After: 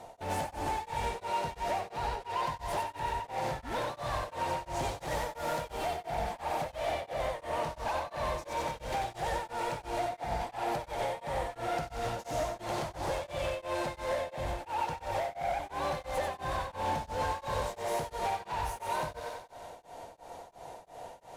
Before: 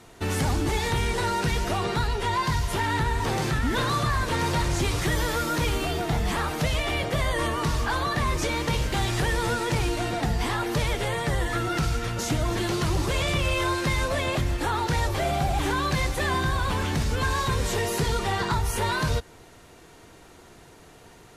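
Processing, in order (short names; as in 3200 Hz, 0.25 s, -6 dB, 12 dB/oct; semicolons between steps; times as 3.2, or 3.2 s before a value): band shelf 690 Hz +15 dB 1.1 oct; compressor 6:1, threshold -24 dBFS, peak gain reduction 13.5 dB; hard clip -25.5 dBFS, distortion -12 dB; thinning echo 92 ms, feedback 68%, high-pass 420 Hz, level -3.5 dB; beating tremolo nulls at 2.9 Hz; gain -4.5 dB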